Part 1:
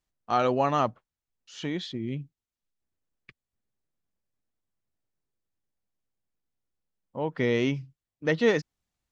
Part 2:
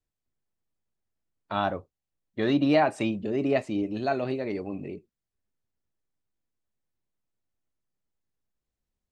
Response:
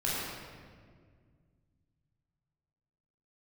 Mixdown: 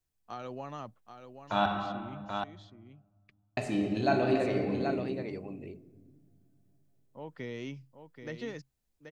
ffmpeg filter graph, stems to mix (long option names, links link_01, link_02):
-filter_complex "[0:a]acrossover=split=230[link_01][link_02];[link_02]acompressor=threshold=-25dB:ratio=6[link_03];[link_01][link_03]amix=inputs=2:normalize=0,volume=-13dB,asplit=2[link_04][link_05];[link_05]volume=-9dB[link_06];[1:a]volume=-4dB,asplit=3[link_07][link_08][link_09];[link_07]atrim=end=1.66,asetpts=PTS-STARTPTS,afade=type=out:start_time=1.656:duration=0.004:curve=hsin[link_10];[link_08]atrim=start=1.66:end=3.57,asetpts=PTS-STARTPTS,volume=0[link_11];[link_09]atrim=start=3.57,asetpts=PTS-STARTPTS,afade=type=in:duration=0.004:curve=hsin[link_12];[link_10][link_11][link_12]concat=n=3:v=0:a=1,asplit=4[link_13][link_14][link_15][link_16];[link_14]volume=-7dB[link_17];[link_15]volume=-3.5dB[link_18];[link_16]apad=whole_len=401798[link_19];[link_04][link_19]sidechaincompress=threshold=-40dB:ratio=8:attack=41:release=321[link_20];[2:a]atrim=start_sample=2205[link_21];[link_17][link_21]afir=irnorm=-1:irlink=0[link_22];[link_06][link_18]amix=inputs=2:normalize=0,aecho=0:1:781:1[link_23];[link_20][link_13][link_22][link_23]amix=inputs=4:normalize=0,highshelf=frequency=5600:gain=7.5"